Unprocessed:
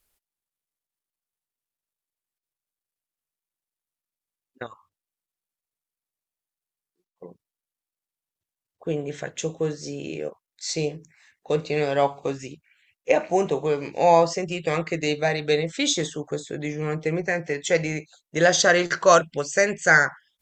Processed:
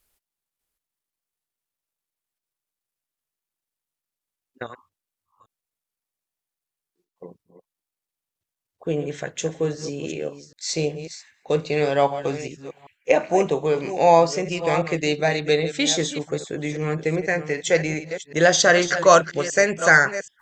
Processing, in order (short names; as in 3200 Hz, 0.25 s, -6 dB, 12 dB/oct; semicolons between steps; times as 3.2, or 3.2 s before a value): reverse delay 0.39 s, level -11.5 dB; gain +2 dB